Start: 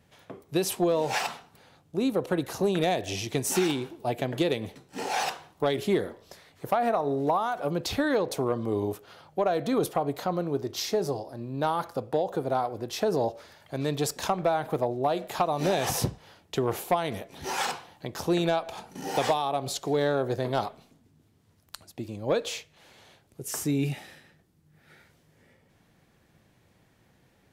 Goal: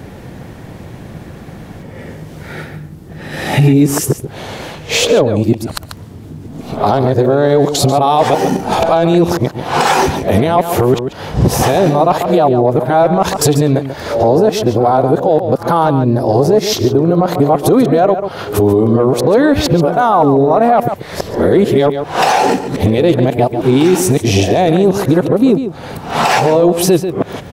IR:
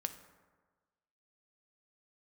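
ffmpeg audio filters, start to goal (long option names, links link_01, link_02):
-filter_complex "[0:a]areverse,tiltshelf=frequency=1200:gain=5,acompressor=threshold=-38dB:ratio=3,asplit=2[link_01][link_02];[link_02]adelay=139.9,volume=-11dB,highshelf=frequency=4000:gain=-3.15[link_03];[link_01][link_03]amix=inputs=2:normalize=0,alimiter=level_in=29dB:limit=-1dB:release=50:level=0:latency=1,volume=-1dB"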